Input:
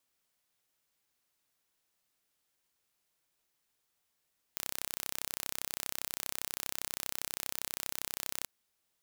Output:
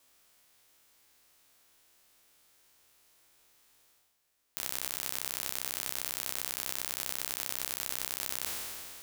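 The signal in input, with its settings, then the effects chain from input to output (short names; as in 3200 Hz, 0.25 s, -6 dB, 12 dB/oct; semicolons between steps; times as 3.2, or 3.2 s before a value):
pulse train 32.5/s, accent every 0, -8.5 dBFS 3.90 s
spectral trails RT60 2.41 s; reverse; upward compressor, threshold -54 dBFS; reverse; bell 170 Hz -10 dB 0.33 oct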